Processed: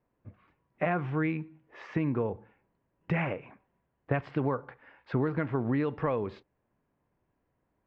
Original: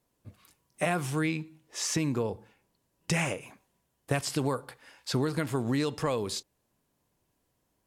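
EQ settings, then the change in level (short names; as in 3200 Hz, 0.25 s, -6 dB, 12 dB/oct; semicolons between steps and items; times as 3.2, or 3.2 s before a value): LPF 2200 Hz 24 dB/oct; 0.0 dB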